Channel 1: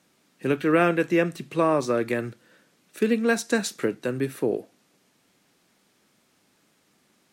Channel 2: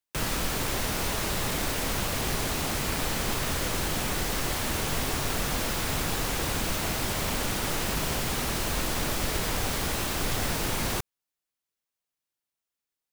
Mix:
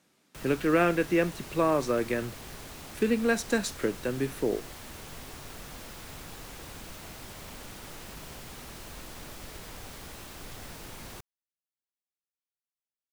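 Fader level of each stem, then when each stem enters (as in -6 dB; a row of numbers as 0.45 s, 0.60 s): -3.5 dB, -15.0 dB; 0.00 s, 0.20 s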